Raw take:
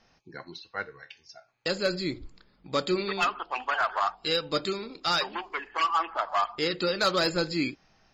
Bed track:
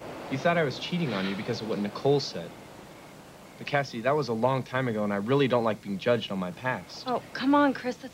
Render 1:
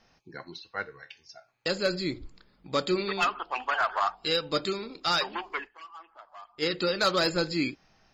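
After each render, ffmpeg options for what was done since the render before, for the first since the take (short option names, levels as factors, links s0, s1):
-filter_complex "[0:a]asplit=3[s0][s1][s2];[s0]atrim=end=5.97,asetpts=PTS-STARTPTS,afade=t=out:st=5.64:d=0.33:c=exp:silence=0.0891251[s3];[s1]atrim=start=5.97:end=6.3,asetpts=PTS-STARTPTS,volume=0.0891[s4];[s2]atrim=start=6.3,asetpts=PTS-STARTPTS,afade=t=in:d=0.33:c=exp:silence=0.0891251[s5];[s3][s4][s5]concat=n=3:v=0:a=1"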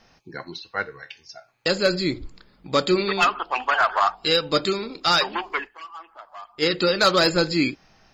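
-af "volume=2.24"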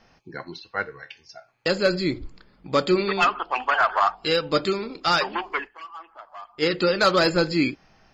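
-af "highshelf=f=5500:g=-8.5,bandreject=f=3800:w=17"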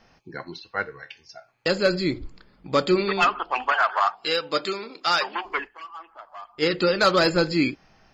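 -filter_complex "[0:a]asettb=1/sr,asplit=3[s0][s1][s2];[s0]atrim=end=3.724[s3];[s1]atrim=start=3.72:end=5.45,asetpts=PTS-STARTPTS,afade=t=in:d=0.004:c=qsin,afade=t=out:st=1.726:d=0.004:c=qsin,highpass=f=580:p=1[s4];[s2]atrim=start=5.446[s5];[s3][s4]acrossfade=d=0.004:c1=hsin:c2=qsin[s6];[s6][s5]acrossfade=d=0.004:c1=qsin:c2=hsin"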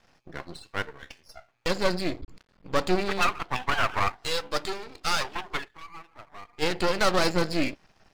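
-af "aeval=exprs='max(val(0),0)':c=same"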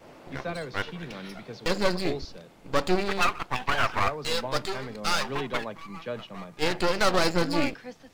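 -filter_complex "[1:a]volume=0.316[s0];[0:a][s0]amix=inputs=2:normalize=0"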